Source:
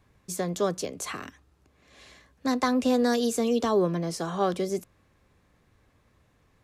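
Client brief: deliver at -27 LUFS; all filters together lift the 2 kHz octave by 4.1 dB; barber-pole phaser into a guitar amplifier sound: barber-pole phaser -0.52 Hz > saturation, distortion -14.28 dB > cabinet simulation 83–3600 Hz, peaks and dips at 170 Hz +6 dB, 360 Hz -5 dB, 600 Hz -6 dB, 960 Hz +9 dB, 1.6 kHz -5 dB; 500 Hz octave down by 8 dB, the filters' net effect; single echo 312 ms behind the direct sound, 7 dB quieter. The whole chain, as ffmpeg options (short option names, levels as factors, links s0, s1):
-filter_complex "[0:a]equalizer=f=500:t=o:g=-6.5,equalizer=f=2000:t=o:g=8.5,aecho=1:1:312:0.447,asplit=2[s0][s1];[s1]afreqshift=-0.52[s2];[s0][s2]amix=inputs=2:normalize=1,asoftclip=threshold=0.0668,highpass=83,equalizer=f=170:t=q:w=4:g=6,equalizer=f=360:t=q:w=4:g=-5,equalizer=f=600:t=q:w=4:g=-6,equalizer=f=960:t=q:w=4:g=9,equalizer=f=1600:t=q:w=4:g=-5,lowpass=f=3600:w=0.5412,lowpass=f=3600:w=1.3066,volume=1.88"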